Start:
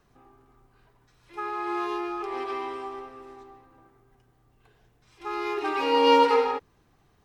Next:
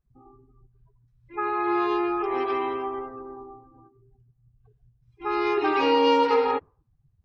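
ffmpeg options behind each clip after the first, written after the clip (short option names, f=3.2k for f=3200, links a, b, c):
-af "afftdn=nr=31:nf=-49,equalizer=f=120:t=o:w=2.7:g=6,acompressor=threshold=-22dB:ratio=4,volume=4.5dB"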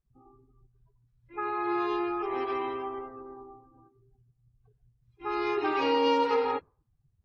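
-af "volume=-5dB" -ar 32000 -c:a aac -b:a 32k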